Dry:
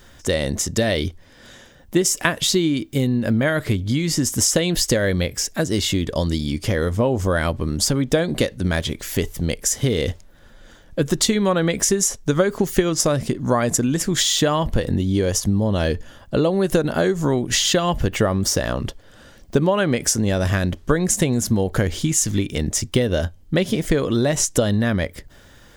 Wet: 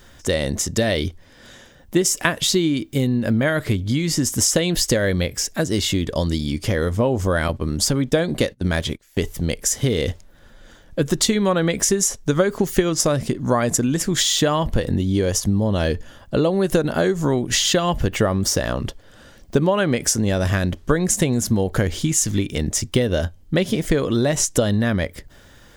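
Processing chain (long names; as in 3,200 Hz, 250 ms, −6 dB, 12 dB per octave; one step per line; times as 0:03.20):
0:07.48–0:09.19: noise gate −25 dBFS, range −25 dB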